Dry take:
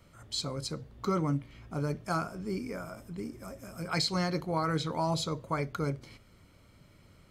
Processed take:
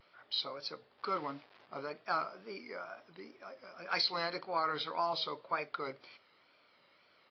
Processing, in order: 0.98–1.68 s: send-on-delta sampling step -47.5 dBFS; high-pass 620 Hz 12 dB/octave; wow and flutter 90 cents; resampled via 11.025 kHz; AAC 32 kbps 22.05 kHz

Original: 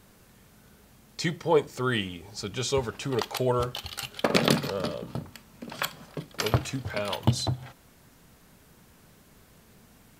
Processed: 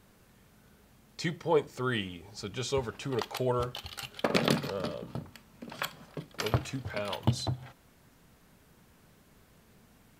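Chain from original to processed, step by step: tone controls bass 0 dB, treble -3 dB; trim -4 dB

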